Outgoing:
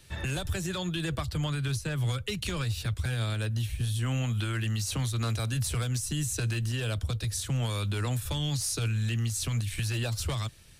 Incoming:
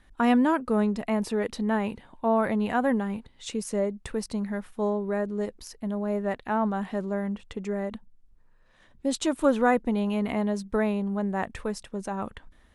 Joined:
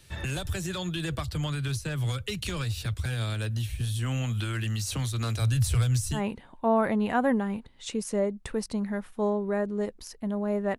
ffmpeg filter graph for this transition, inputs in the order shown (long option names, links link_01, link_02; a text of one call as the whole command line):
ffmpeg -i cue0.wav -i cue1.wav -filter_complex "[0:a]asettb=1/sr,asplit=3[link_01][link_02][link_03];[link_01]atrim=end=5.414[link_04];[link_02]atrim=start=5.41:end=6.22,asetpts=PTS-STARTPTS,afade=type=in:duration=0.004:curve=qsin,afade=type=out:start_time=0.806:duration=0.004:curve=qsin,lowshelf=frequency=140:width_type=q:width=1.5:gain=7[link_05];[link_03]atrim=start=6.216[link_06];[link_04][link_05]acrossfade=duration=0.004:curve1=hsin:curve2=qsin[link_07];[link_07][link_06]acrossfade=duration=0.004:curve1=qsin:curve2=hsin,apad=whole_dur=10.78,atrim=end=10.78,atrim=end=6.22,asetpts=PTS-STARTPTS[link_08];[1:a]atrim=start=1.72:end=6.38,asetpts=PTS-STARTPTS[link_09];[link_08][link_09]acrossfade=duration=0.1:curve1=tri:curve2=tri" out.wav